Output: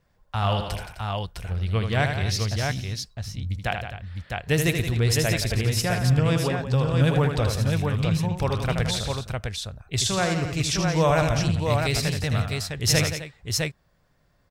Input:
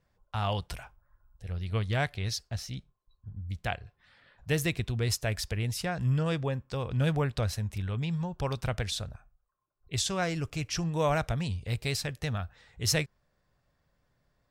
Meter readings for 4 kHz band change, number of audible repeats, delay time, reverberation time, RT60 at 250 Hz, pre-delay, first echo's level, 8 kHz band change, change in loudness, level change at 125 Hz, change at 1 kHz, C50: +8.0 dB, 4, 78 ms, no reverb, no reverb, no reverb, -6.5 dB, +8.0 dB, +7.0 dB, +8.0 dB, +8.0 dB, no reverb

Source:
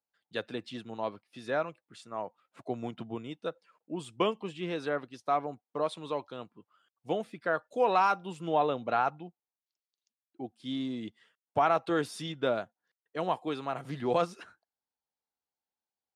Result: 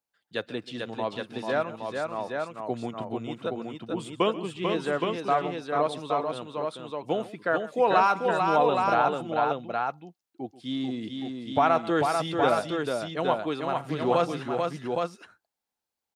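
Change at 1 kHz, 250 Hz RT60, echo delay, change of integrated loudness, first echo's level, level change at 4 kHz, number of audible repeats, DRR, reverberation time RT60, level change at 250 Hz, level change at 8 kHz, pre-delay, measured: +6.0 dB, no reverb, 134 ms, +5.0 dB, -18.0 dB, +6.0 dB, 3, no reverb, no reverb, +6.0 dB, no reading, no reverb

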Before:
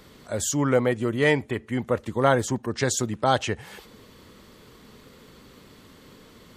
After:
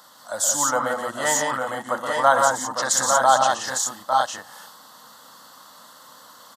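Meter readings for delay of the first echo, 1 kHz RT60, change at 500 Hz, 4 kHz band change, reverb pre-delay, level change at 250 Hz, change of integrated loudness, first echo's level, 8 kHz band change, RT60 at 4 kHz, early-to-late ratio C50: 68 ms, no reverb, 0.0 dB, +5.5 dB, no reverb, -9.0 dB, +3.5 dB, -16.5 dB, +10.0 dB, no reverb, no reverb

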